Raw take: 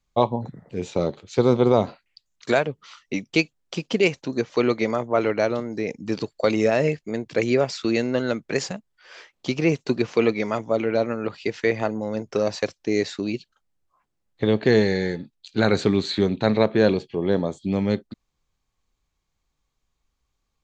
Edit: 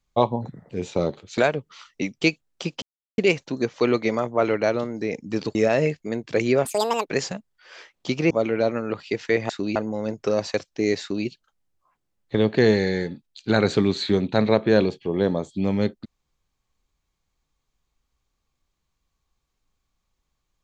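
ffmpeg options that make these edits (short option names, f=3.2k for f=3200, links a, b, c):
-filter_complex "[0:a]asplit=9[a][b][c][d][e][f][g][h][i];[a]atrim=end=1.382[j];[b]atrim=start=2.498:end=3.94,asetpts=PTS-STARTPTS,afade=t=out:st=1.438:d=0.004:c=hsin,apad=pad_dur=0.36[k];[c]atrim=start=3.94:end=6.312,asetpts=PTS-STARTPTS,afade=t=in:d=0.004:c=hsin[l];[d]atrim=start=6.568:end=7.674[m];[e]atrim=start=7.67:end=8.49,asetpts=PTS-STARTPTS,asetrate=81144,aresample=44100,atrim=end_sample=19653,asetpts=PTS-STARTPTS[n];[f]atrim=start=8.486:end=9.702[o];[g]atrim=start=10.648:end=11.842[p];[h]atrim=start=13.088:end=13.352[q];[i]atrim=start=11.838[r];[k][l]concat=n=2:v=0:a=1[s];[j][s]acrossfade=d=0.004:c1=hsin:c2=hsin[t];[t][m]acrossfade=d=0.004:c1=hsin:c2=hsin[u];[u][n]acrossfade=d=0.004:c1=hsin:c2=hsin[v];[v][o]acrossfade=d=0.004:c1=hsin:c2=hsin[w];[w][p]acrossfade=d=0.004:c1=hsin:c2=hsin[x];[x][q]acrossfade=d=0.004:c1=hsin:c2=hsin[y];[y][r]acrossfade=d=0.004:c1=hsin:c2=hsin"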